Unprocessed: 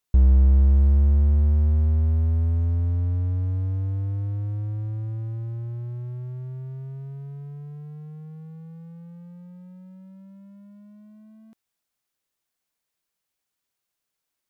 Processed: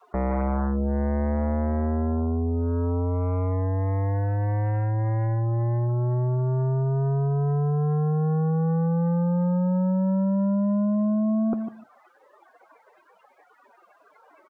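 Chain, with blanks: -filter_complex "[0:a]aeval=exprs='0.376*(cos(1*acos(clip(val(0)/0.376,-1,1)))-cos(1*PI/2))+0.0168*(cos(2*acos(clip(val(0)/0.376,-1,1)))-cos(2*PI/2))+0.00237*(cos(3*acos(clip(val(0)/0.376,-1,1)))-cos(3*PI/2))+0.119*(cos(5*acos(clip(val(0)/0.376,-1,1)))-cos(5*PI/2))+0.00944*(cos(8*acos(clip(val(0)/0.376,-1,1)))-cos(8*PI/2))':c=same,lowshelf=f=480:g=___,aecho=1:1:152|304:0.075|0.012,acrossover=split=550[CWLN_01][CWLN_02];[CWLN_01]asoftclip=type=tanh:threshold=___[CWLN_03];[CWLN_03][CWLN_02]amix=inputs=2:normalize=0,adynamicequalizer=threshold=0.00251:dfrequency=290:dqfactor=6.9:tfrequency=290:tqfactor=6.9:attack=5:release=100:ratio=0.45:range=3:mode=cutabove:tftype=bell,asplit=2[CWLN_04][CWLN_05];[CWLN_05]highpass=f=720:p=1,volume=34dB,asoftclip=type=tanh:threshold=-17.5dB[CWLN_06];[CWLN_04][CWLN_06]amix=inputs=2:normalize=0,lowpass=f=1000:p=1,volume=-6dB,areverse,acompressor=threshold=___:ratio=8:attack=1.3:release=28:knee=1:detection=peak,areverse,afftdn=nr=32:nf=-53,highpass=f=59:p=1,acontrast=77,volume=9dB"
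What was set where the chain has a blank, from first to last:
2.5, -22.5dB, -38dB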